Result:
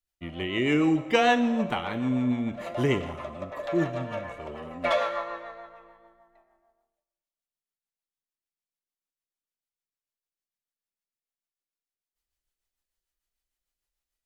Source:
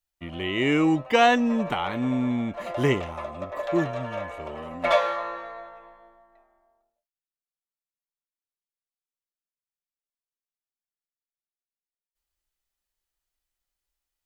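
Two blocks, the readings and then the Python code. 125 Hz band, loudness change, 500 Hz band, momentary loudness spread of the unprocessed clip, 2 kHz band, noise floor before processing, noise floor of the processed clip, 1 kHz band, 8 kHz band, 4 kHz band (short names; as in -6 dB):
-1.0 dB, -2.0 dB, -2.5 dB, 17 LU, -2.5 dB, under -85 dBFS, under -85 dBFS, -3.5 dB, n/a, -2.5 dB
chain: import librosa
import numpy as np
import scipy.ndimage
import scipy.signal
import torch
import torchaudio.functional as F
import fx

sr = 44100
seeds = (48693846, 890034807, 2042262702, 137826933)

y = fx.rotary(x, sr, hz=6.7)
y = fx.rev_schroeder(y, sr, rt60_s=1.2, comb_ms=32, drr_db=12.5)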